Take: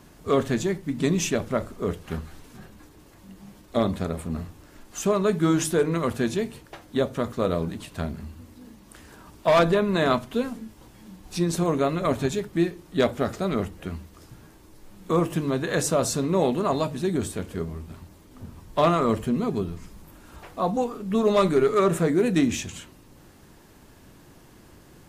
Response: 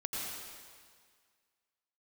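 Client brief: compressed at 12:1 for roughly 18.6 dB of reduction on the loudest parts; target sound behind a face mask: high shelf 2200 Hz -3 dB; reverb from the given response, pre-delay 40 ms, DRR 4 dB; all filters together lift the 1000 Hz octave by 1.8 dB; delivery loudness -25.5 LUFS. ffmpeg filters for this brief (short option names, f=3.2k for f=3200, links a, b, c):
-filter_complex "[0:a]equalizer=f=1k:t=o:g=3,acompressor=threshold=-34dB:ratio=12,asplit=2[a][b];[1:a]atrim=start_sample=2205,adelay=40[c];[b][c]afir=irnorm=-1:irlink=0,volume=-7dB[d];[a][d]amix=inputs=2:normalize=0,highshelf=f=2.2k:g=-3,volume=13.5dB"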